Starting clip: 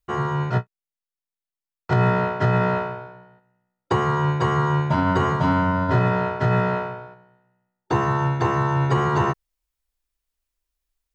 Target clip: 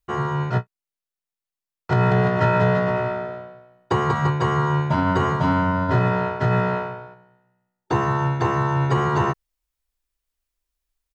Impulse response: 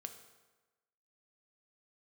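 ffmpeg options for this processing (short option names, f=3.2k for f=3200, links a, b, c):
-filter_complex "[0:a]asplit=3[a][b][c];[a]afade=t=out:st=2.1:d=0.02[d];[b]aecho=1:1:190|342|463.6|560.9|638.7:0.631|0.398|0.251|0.158|0.1,afade=t=in:st=2.1:d=0.02,afade=t=out:st=4.29:d=0.02[e];[c]afade=t=in:st=4.29:d=0.02[f];[d][e][f]amix=inputs=3:normalize=0"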